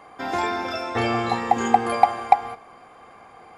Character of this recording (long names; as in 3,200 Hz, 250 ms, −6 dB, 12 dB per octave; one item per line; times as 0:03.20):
background noise floor −48 dBFS
spectral slope −3.0 dB per octave